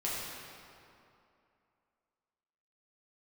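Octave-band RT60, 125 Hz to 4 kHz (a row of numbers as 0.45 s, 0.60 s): 2.4 s, 2.7 s, 2.6 s, 2.7 s, 2.2 s, 1.7 s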